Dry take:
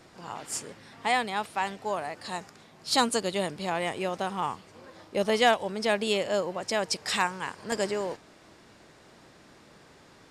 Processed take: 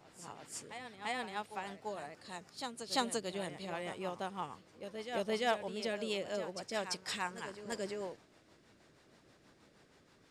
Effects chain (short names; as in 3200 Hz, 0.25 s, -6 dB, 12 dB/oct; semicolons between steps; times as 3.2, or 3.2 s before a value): rotary speaker horn 6.3 Hz; reverse echo 0.342 s -9 dB; gain -8.5 dB